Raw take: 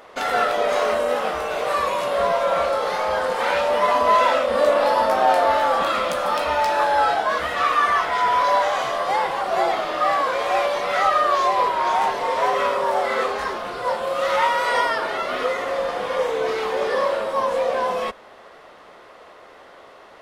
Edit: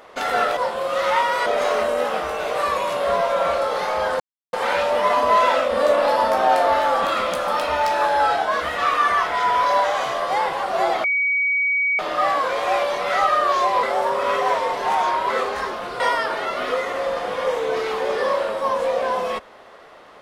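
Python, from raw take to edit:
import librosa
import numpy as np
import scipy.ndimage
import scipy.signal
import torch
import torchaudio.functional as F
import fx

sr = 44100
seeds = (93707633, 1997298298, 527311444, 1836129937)

y = fx.edit(x, sr, fx.insert_silence(at_s=3.31, length_s=0.33),
    fx.insert_tone(at_s=9.82, length_s=0.95, hz=2260.0, db=-17.0),
    fx.reverse_span(start_s=11.66, length_s=1.47),
    fx.move(start_s=13.83, length_s=0.89, to_s=0.57), tone=tone)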